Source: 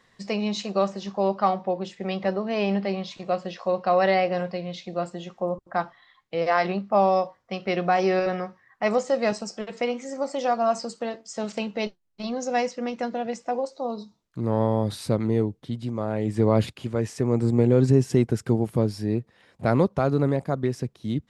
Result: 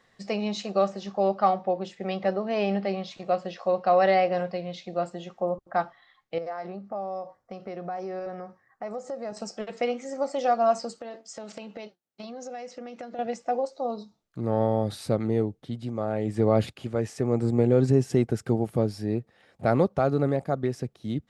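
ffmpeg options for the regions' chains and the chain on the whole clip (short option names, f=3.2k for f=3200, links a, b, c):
-filter_complex "[0:a]asettb=1/sr,asplit=3[a][b][c];[a]atrim=end=6.384[d];[b]atrim=start=6.38:end=9.37,asetpts=PTS-STARTPTS,afade=t=in:d=0.004:c=qsin,afade=t=out:st=2.986:d=0.004:c=qsin,acompressor=threshold=-33dB:ratio=3:attack=3.2:release=140:knee=1:detection=peak,equalizer=f=3k:t=o:w=1.3:g=-11[e];[c]atrim=start=9.366[f];[d][e]acrossfade=d=0.004:c1=hsin:c2=qsin[g];[g][f]acrossfade=d=0.004:c1=qsin:c2=hsin,asettb=1/sr,asplit=3[h][i][j];[h]atrim=end=10.984[k];[i]atrim=start=10.98:end=13.19,asetpts=PTS-STARTPTS,afade=t=in:d=0.004:c=qsin,afade=t=out:st=2.206:d=0.004:c=qsin,highpass=170,acompressor=threshold=-33dB:ratio=12:attack=3.2:release=140:knee=1:detection=peak[l];[j]atrim=start=13.186[m];[k][l]acrossfade=d=0.004:c1=hsin:c2=qsin[n];[n][m]acrossfade=d=0.004:c1=qsin:c2=hsin,equalizer=f=770:t=o:w=1.6:g=5,bandreject=f=990:w=6.1,volume=-3.5dB"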